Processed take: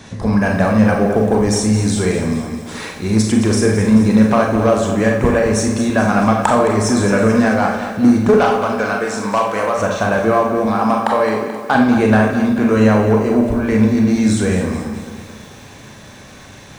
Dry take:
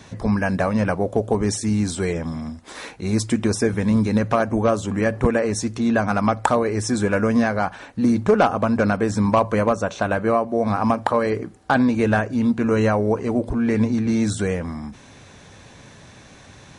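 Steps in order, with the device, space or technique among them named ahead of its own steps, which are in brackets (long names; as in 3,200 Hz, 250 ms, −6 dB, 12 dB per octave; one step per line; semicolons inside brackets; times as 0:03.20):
0:08.36–0:09.79: high-pass filter 830 Hz 6 dB per octave
0:10.66–0:11.75: high-pass filter 310 Hz 6 dB per octave
four-comb reverb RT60 0.51 s, combs from 29 ms, DRR 1.5 dB
parallel distortion (in parallel at −9.5 dB: hard clipping −20.5 dBFS, distortion −6 dB)
on the sum: feedback echo at a low word length 217 ms, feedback 55%, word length 7 bits, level −10 dB
level +2 dB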